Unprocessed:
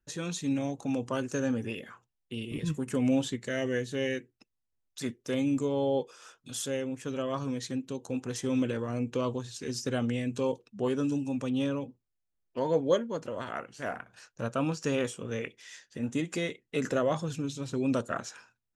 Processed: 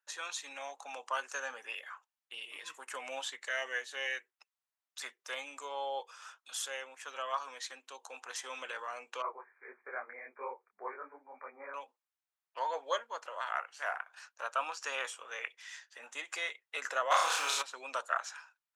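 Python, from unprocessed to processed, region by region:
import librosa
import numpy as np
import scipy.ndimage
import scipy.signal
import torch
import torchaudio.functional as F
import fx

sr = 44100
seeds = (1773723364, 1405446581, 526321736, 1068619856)

y = fx.chain(x, sr, fx.brickwall_lowpass(high_hz=2400.0),
    fx.peak_eq(hz=390.0, db=9.0, octaves=0.34),
    fx.detune_double(cents=58), at=(9.22, 11.74))
y = fx.spec_flatten(y, sr, power=0.64, at=(17.1, 17.61), fade=0.02)
y = fx.room_flutter(y, sr, wall_m=5.3, rt60_s=0.5, at=(17.1, 17.61), fade=0.02)
y = fx.env_flatten(y, sr, amount_pct=50, at=(17.1, 17.61), fade=0.02)
y = scipy.signal.sosfilt(scipy.signal.butter(4, 870.0, 'highpass', fs=sr, output='sos'), y)
y = fx.high_shelf(y, sr, hz=2300.0, db=-9.5)
y = y * 10.0 ** (6.0 / 20.0)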